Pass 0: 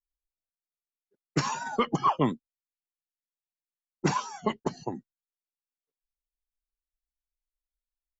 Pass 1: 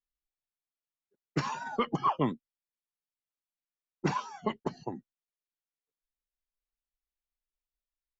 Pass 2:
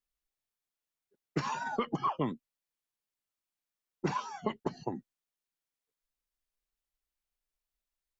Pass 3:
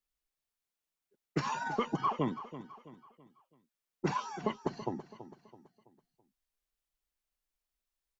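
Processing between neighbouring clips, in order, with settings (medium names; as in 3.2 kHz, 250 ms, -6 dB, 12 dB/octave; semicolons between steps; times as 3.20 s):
low-pass 4.4 kHz 12 dB/octave; trim -3.5 dB
compression 4:1, threshold -31 dBFS, peak gain reduction 8 dB; trim +2.5 dB
feedback delay 330 ms, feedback 41%, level -13.5 dB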